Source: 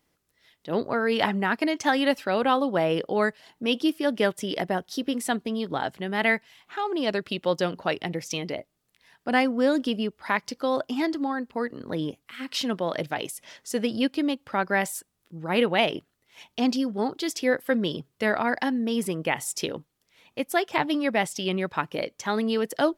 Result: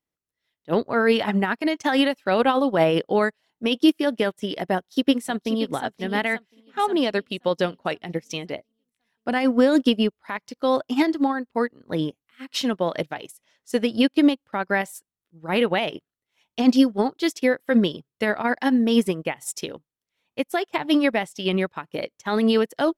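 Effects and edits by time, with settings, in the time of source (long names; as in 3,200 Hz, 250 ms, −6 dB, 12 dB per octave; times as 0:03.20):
0:04.75–0:05.71: delay throw 530 ms, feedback 60%, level −9.5 dB
whole clip: notch filter 4,800 Hz, Q 19; boost into a limiter +17 dB; expander for the loud parts 2.5 to 1, over −25 dBFS; level −5 dB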